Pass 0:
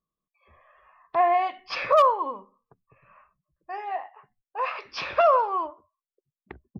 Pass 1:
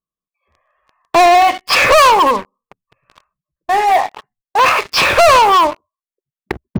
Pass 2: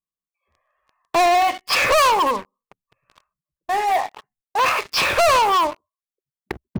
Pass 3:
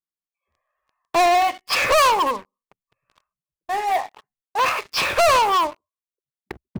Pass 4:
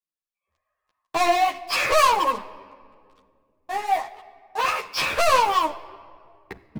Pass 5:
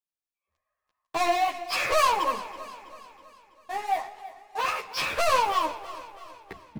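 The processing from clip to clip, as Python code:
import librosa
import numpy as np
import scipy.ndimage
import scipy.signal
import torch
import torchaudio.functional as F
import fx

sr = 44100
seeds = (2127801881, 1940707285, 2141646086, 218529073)

y1 = fx.leveller(x, sr, passes=5)
y1 = y1 * 10.0 ** (4.5 / 20.0)
y2 = fx.high_shelf(y1, sr, hz=5300.0, db=4.0)
y2 = y2 * 10.0 ** (-7.5 / 20.0)
y3 = fx.upward_expand(y2, sr, threshold_db=-27.0, expansion=1.5)
y4 = fx.room_shoebox(y3, sr, seeds[0], volume_m3=4000.0, walls='mixed', distance_m=0.54)
y4 = fx.ensemble(y4, sr)
y5 = fx.echo_feedback(y4, sr, ms=326, feedback_pct=51, wet_db=-16.0)
y5 = y5 * 10.0 ** (-4.5 / 20.0)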